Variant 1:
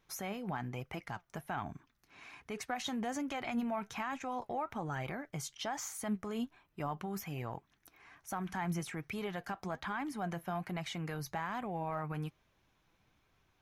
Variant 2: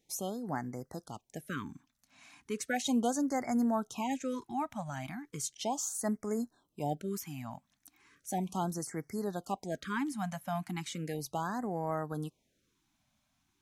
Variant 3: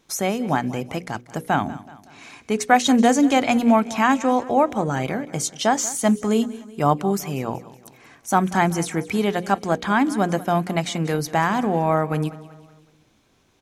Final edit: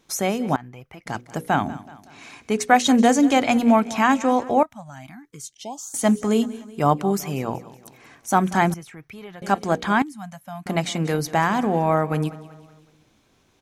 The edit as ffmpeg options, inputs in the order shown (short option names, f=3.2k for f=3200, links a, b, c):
-filter_complex "[0:a]asplit=2[a][b];[1:a]asplit=2[c][d];[2:a]asplit=5[e][f][g][h][i];[e]atrim=end=0.562[j];[a]atrim=start=0.558:end=1.062[k];[f]atrim=start=1.058:end=4.632[l];[c]atrim=start=4.628:end=5.942[m];[g]atrim=start=5.938:end=8.742[n];[b]atrim=start=8.738:end=9.422[o];[h]atrim=start=9.418:end=10.022[p];[d]atrim=start=10.018:end=10.662[q];[i]atrim=start=10.658[r];[j][k]acrossfade=d=0.004:c1=hsin:c2=hsin[s];[s][l]acrossfade=d=0.004:c1=hsin:c2=hsin[t];[t][m]acrossfade=d=0.004:c1=hsin:c2=hsin[u];[u][n]acrossfade=d=0.004:c1=hsin:c2=hsin[v];[v][o]acrossfade=d=0.004:c1=hsin:c2=hsin[w];[w][p]acrossfade=d=0.004:c1=hsin:c2=hsin[x];[x][q]acrossfade=d=0.004:c1=hsin:c2=hsin[y];[y][r]acrossfade=d=0.004:c1=hsin:c2=hsin"